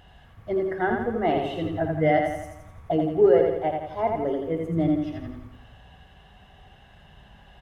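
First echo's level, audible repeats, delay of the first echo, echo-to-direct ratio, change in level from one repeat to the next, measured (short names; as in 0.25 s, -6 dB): -4.0 dB, 6, 84 ms, -2.5 dB, -6.0 dB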